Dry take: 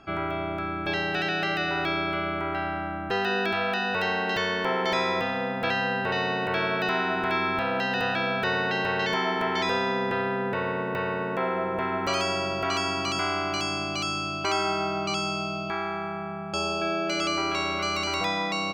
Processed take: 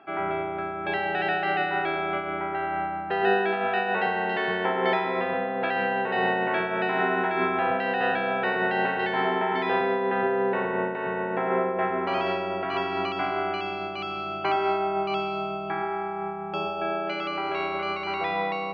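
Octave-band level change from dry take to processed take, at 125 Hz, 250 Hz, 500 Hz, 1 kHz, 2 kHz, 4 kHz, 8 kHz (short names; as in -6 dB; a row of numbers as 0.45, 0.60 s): -4.5 dB, -1.0 dB, +2.5 dB, +2.5 dB, -0.5 dB, -7.0 dB, under -25 dB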